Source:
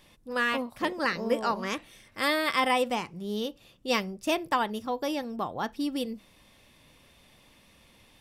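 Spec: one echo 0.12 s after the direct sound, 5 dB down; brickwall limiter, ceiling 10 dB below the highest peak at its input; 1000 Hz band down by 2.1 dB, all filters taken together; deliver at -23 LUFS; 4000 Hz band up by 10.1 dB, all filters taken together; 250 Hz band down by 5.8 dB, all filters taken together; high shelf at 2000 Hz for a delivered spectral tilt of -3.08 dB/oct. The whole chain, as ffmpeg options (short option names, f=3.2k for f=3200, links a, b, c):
-af "equalizer=f=250:t=o:g=-7,equalizer=f=1k:t=o:g=-4,highshelf=f=2k:g=6,equalizer=f=4k:t=o:g=7.5,alimiter=limit=-15.5dB:level=0:latency=1,aecho=1:1:120:0.562,volume=5.5dB"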